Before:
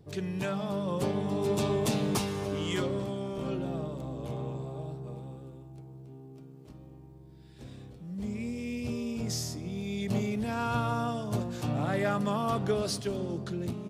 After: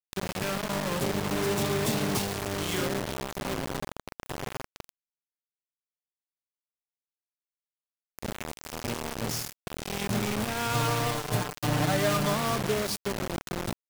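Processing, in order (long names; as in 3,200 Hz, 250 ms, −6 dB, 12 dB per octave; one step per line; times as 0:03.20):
bit reduction 5 bits
0:10.74–0:12.34: comb filter 6.7 ms, depth 74%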